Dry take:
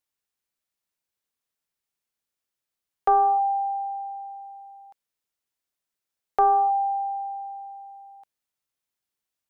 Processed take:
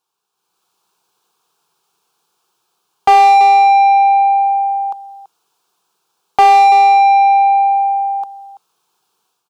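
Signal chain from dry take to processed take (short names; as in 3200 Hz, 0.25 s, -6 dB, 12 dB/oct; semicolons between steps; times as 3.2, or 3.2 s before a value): AGC gain up to 11 dB; fixed phaser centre 390 Hz, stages 8; echo 0.333 s -17 dB; overdrive pedal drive 29 dB, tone 1400 Hz, clips at -1 dBFS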